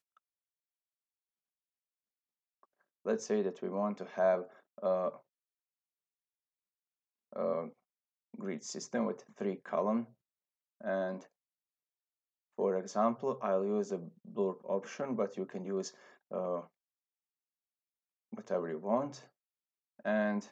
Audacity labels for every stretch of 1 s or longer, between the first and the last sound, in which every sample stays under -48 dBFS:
5.170000	7.330000	silence
11.230000	12.590000	silence
16.650000	18.330000	silence